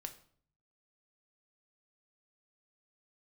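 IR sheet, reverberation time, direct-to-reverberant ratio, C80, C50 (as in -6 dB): 0.55 s, 6.5 dB, 17.0 dB, 13.5 dB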